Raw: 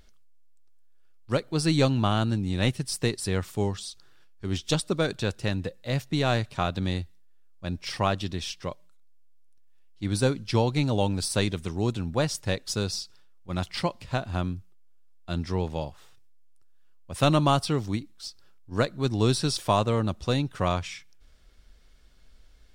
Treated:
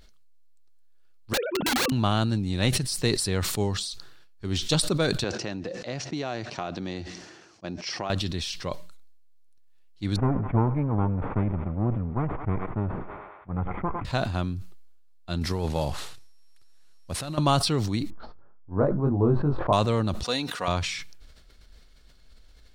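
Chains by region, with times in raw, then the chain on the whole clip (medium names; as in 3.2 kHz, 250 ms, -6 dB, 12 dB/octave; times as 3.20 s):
1.33–1.92 s: formants replaced by sine waves + integer overflow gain 21 dB
5.24–8.10 s: cabinet simulation 170–6400 Hz, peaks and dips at 340 Hz +6 dB, 710 Hz +5 dB, 3.8 kHz -7 dB, 5.8 kHz +6 dB + compression 4:1, threshold -28 dBFS
10.16–14.05 s: comb filter that takes the minimum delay 0.89 ms + Gaussian low-pass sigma 6 samples + thinning echo 103 ms, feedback 84%, level -19.5 dB
15.41–17.38 s: CVSD coder 64 kbps + compressor with a negative ratio -29 dBFS
18.10–19.73 s: low-pass 1.1 kHz 24 dB/octave + doubling 21 ms -4 dB + tape noise reduction on one side only encoder only
20.23–20.68 s: high-pass 630 Hz 6 dB/octave + comb 4.2 ms, depth 39%
whole clip: peaking EQ 4.2 kHz +6.5 dB 0.2 oct; decay stretcher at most 42 dB/s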